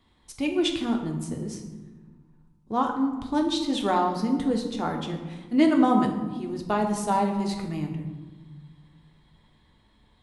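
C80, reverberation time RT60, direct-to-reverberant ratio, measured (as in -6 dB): 8.5 dB, 1.4 s, 2.0 dB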